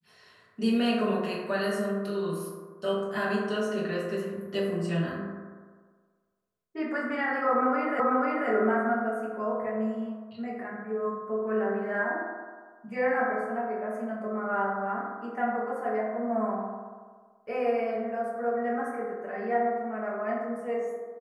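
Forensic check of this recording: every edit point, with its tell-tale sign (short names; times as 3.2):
8 repeat of the last 0.49 s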